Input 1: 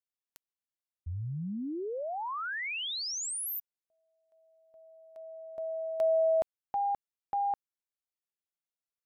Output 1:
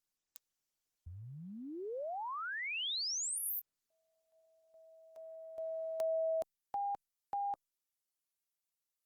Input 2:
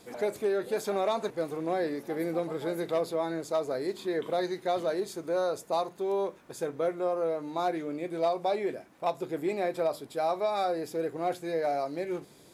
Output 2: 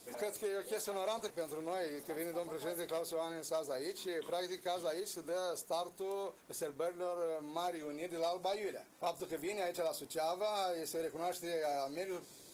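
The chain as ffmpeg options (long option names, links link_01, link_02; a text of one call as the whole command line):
ffmpeg -i in.wav -filter_complex "[0:a]acrossover=split=460|3700[link_01][link_02][link_03];[link_01]acompressor=threshold=-40dB:ratio=6[link_04];[link_02]acompressor=threshold=-34dB:ratio=2[link_05];[link_03]acompressor=threshold=-46dB:ratio=2.5[link_06];[link_04][link_05][link_06]amix=inputs=3:normalize=0,bass=frequency=250:gain=-3,treble=frequency=4000:gain=10,volume=-4.5dB" -ar 48000 -c:a libopus -b:a 20k out.opus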